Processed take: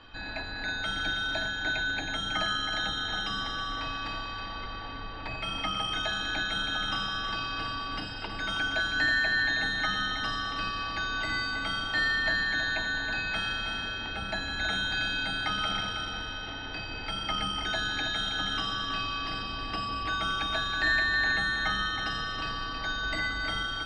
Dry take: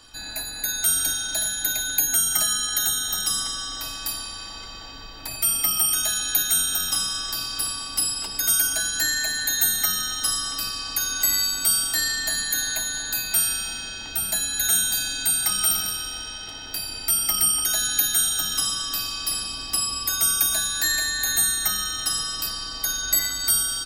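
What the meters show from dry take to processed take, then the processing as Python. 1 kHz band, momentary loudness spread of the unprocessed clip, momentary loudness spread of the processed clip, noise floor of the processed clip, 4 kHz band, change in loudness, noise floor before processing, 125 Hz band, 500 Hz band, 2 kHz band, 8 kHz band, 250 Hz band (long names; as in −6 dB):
+3.5 dB, 10 LU, 10 LU, −38 dBFS, −5.5 dB, −8.0 dB, −36 dBFS, +3.5 dB, +3.0 dB, +3.5 dB, −29.5 dB, +3.0 dB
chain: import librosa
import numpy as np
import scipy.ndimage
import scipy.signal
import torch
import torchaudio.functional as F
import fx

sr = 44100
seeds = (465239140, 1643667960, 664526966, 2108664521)

y = scipy.signal.sosfilt(scipy.signal.butter(4, 3000.0, 'lowpass', fs=sr, output='sos'), x)
y = y + 10.0 ** (-8.5 / 20.0) * np.pad(y, (int(321 * sr / 1000.0), 0))[:len(y)]
y = y * 10.0 ** (2.5 / 20.0)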